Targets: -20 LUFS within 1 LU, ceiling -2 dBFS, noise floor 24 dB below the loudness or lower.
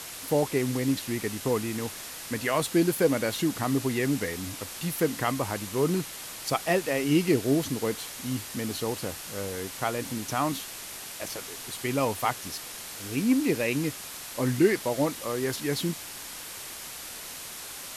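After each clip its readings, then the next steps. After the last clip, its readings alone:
noise floor -41 dBFS; noise floor target -53 dBFS; loudness -29.0 LUFS; peak -10.5 dBFS; loudness target -20.0 LUFS
-> denoiser 12 dB, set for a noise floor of -41 dBFS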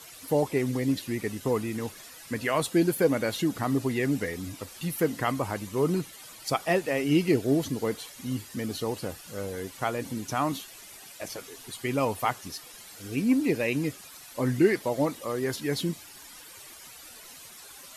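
noise floor -48 dBFS; noise floor target -53 dBFS
-> denoiser 6 dB, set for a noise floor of -48 dBFS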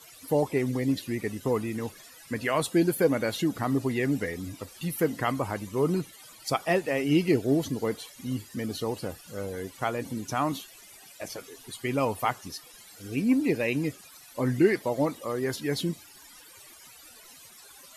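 noise floor -51 dBFS; noise floor target -53 dBFS
-> denoiser 6 dB, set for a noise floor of -51 dBFS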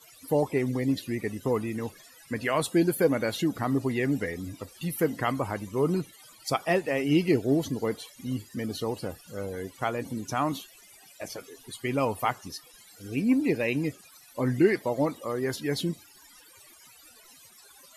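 noise floor -54 dBFS; loudness -28.5 LUFS; peak -11.0 dBFS; loudness target -20.0 LUFS
-> gain +8.5 dB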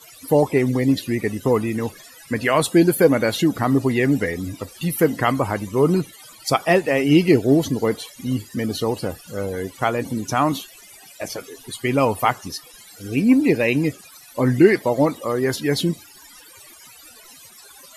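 loudness -20.0 LUFS; peak -2.5 dBFS; noise floor -46 dBFS

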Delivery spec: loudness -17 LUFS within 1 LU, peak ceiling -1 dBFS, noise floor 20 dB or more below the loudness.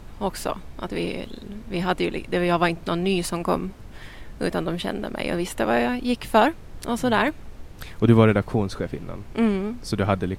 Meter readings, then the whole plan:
dropouts 1; longest dropout 1.1 ms; noise floor -42 dBFS; noise floor target -44 dBFS; loudness -24.0 LUFS; peak -4.0 dBFS; loudness target -17.0 LUFS
-> interpolate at 7.28, 1.1 ms; noise print and reduce 6 dB; gain +7 dB; limiter -1 dBFS

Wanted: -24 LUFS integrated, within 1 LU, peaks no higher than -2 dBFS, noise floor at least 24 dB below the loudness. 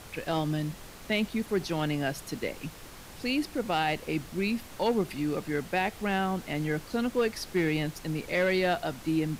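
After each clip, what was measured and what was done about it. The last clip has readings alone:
clipped 0.2%; flat tops at -19.0 dBFS; noise floor -47 dBFS; noise floor target -54 dBFS; loudness -30.0 LUFS; peak -19.0 dBFS; loudness target -24.0 LUFS
-> clip repair -19 dBFS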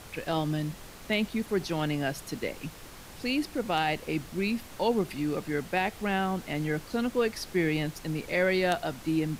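clipped 0.0%; noise floor -47 dBFS; noise floor target -54 dBFS
-> noise print and reduce 7 dB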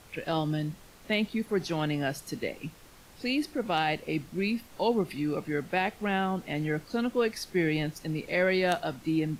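noise floor -53 dBFS; noise floor target -54 dBFS
-> noise print and reduce 6 dB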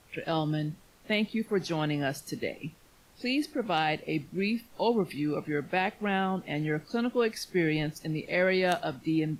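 noise floor -59 dBFS; loudness -30.0 LUFS; peak -10.5 dBFS; loudness target -24.0 LUFS
-> gain +6 dB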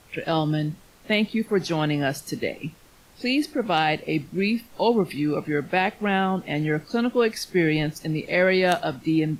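loudness -24.0 LUFS; peak -4.5 dBFS; noise floor -53 dBFS

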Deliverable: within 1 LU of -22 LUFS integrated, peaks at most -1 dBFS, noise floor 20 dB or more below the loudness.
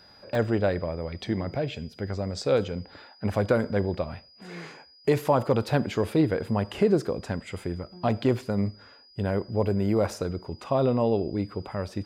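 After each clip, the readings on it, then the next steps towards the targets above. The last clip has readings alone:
dropouts 1; longest dropout 1.9 ms; steady tone 4900 Hz; tone level -53 dBFS; loudness -27.5 LUFS; peak -11.5 dBFS; loudness target -22.0 LUFS
-> interpolate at 0.35, 1.9 ms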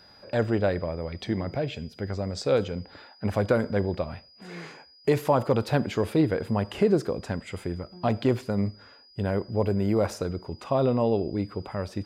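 dropouts 0; steady tone 4900 Hz; tone level -53 dBFS
-> notch 4900 Hz, Q 30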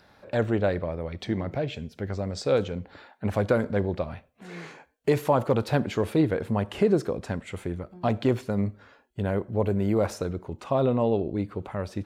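steady tone none; loudness -27.5 LUFS; peak -11.5 dBFS; loudness target -22.0 LUFS
-> gain +5.5 dB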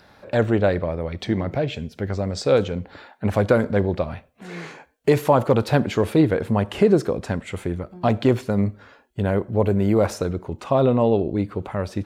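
loudness -22.0 LUFS; peak -6.0 dBFS; noise floor -55 dBFS

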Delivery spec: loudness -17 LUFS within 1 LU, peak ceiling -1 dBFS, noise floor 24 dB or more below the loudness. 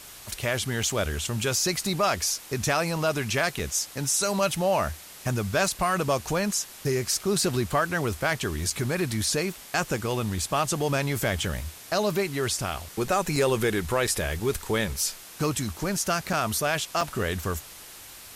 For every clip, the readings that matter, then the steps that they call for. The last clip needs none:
dropouts 7; longest dropout 3.9 ms; noise floor -45 dBFS; noise floor target -51 dBFS; loudness -26.5 LUFS; peak -11.0 dBFS; loudness target -17.0 LUFS
-> interpolate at 0.83/3.59/8.7/13.36/14.07/16.33/17.01, 3.9 ms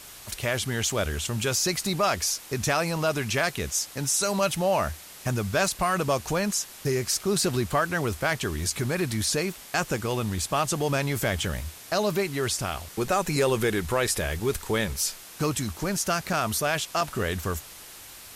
dropouts 0; noise floor -45 dBFS; noise floor target -51 dBFS
-> denoiser 6 dB, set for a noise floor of -45 dBFS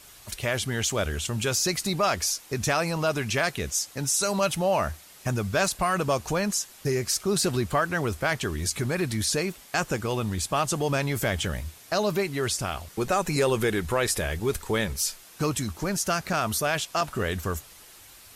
noise floor -50 dBFS; noise floor target -51 dBFS
-> denoiser 6 dB, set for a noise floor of -50 dBFS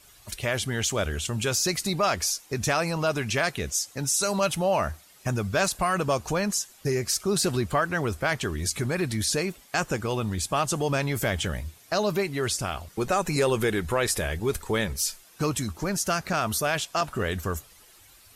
noise floor -54 dBFS; loudness -26.5 LUFS; peak -11.0 dBFS; loudness target -17.0 LUFS
-> gain +9.5 dB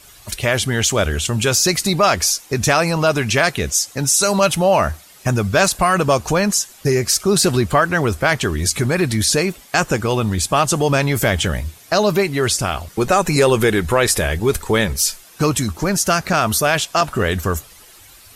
loudness -17.0 LUFS; peak -1.5 dBFS; noise floor -45 dBFS

